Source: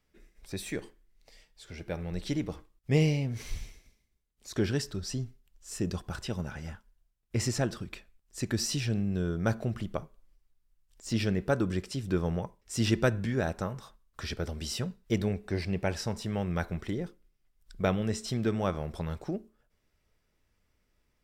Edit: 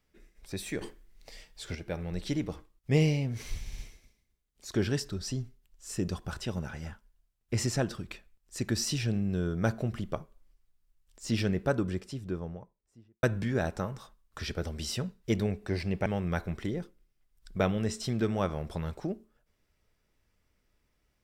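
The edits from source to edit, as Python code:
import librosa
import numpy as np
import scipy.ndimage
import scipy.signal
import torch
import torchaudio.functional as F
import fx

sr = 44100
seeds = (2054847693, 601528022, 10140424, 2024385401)

y = fx.studio_fade_out(x, sr, start_s=11.26, length_s=1.79)
y = fx.edit(y, sr, fx.clip_gain(start_s=0.81, length_s=0.94, db=8.0),
    fx.stutter(start_s=3.6, slice_s=0.06, count=4),
    fx.cut(start_s=15.88, length_s=0.42), tone=tone)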